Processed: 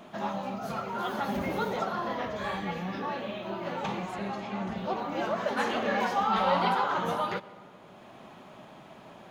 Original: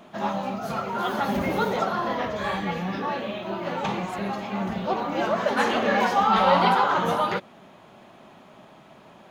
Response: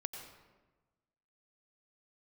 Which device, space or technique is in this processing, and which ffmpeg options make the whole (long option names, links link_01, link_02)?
ducked reverb: -filter_complex "[0:a]asettb=1/sr,asplit=3[link_01][link_02][link_03];[link_01]atrim=end=4.124[link_04];[link_02]atrim=start=4.12:end=4.77,asetpts=PTS-STARTPTS,afade=type=in:duration=0.004:curve=qsin,afade=type=out:start_time=0.646:duration=0.004:curve=qsin,lowpass=10000[link_05];[link_03]atrim=start=4.766[link_06];[link_04][link_05]acrossfade=duration=0.004:curve1=hsin:curve2=qsin[link_07];[link_07][link_06]acrossfade=duration=0.004:curve1=qsin:curve2=hsin,asplit=3[link_08][link_09][link_10];[1:a]atrim=start_sample=2205[link_11];[link_09][link_11]afir=irnorm=-1:irlink=0[link_12];[link_10]apad=whole_len=410352[link_13];[link_12][link_13]sidechaincompress=threshold=-38dB:ratio=8:attack=16:release=666,volume=4.5dB[link_14];[link_08][link_14]amix=inputs=2:normalize=0,volume=-7.5dB"